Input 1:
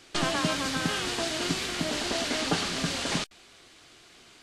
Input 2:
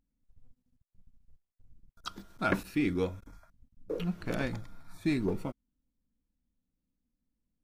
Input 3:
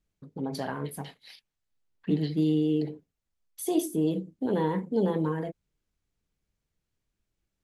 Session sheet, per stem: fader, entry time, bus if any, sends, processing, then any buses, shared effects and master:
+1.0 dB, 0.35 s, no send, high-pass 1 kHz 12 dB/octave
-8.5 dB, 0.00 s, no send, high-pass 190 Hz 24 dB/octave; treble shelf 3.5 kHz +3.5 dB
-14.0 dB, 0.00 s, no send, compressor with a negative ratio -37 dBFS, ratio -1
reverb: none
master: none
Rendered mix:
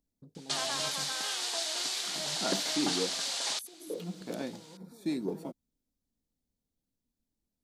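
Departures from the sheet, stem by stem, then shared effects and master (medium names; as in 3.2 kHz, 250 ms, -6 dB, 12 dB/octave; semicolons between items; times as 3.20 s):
stem 2 -8.5 dB -> -2.5 dB; master: extra high-order bell 1.8 kHz -8.5 dB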